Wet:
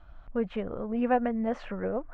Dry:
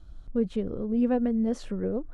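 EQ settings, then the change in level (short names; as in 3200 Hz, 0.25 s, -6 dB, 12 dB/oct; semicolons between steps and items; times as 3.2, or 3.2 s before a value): air absorption 130 m; band shelf 1300 Hz +14.5 dB 2.6 oct; -4.5 dB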